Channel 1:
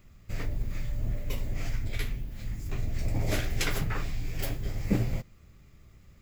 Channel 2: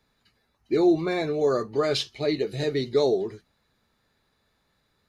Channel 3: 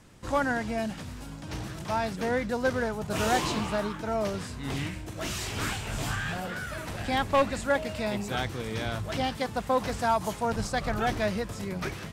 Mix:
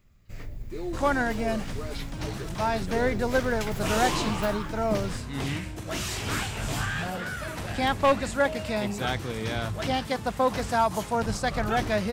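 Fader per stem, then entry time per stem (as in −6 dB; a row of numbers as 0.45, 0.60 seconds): −6.5, −15.0, +2.0 decibels; 0.00, 0.00, 0.70 seconds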